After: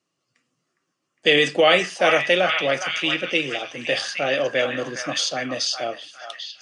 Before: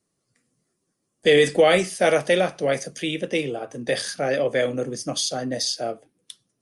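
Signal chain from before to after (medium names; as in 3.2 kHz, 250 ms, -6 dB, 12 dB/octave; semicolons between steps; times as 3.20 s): cabinet simulation 160–6900 Hz, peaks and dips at 210 Hz -8 dB, 430 Hz -6 dB, 1.2 kHz +5 dB, 2.8 kHz +10 dB; on a send: repeats whose band climbs or falls 409 ms, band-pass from 1.2 kHz, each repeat 0.7 oct, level -2 dB; on the sum: trim +1 dB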